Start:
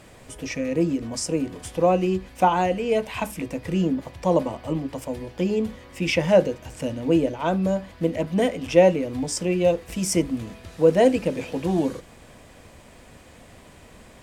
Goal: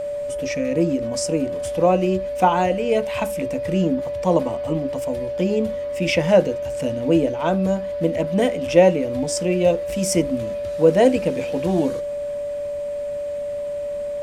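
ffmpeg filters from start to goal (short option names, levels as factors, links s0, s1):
-af "aeval=exprs='val(0)+0.0501*sin(2*PI*580*n/s)':c=same,volume=1.26"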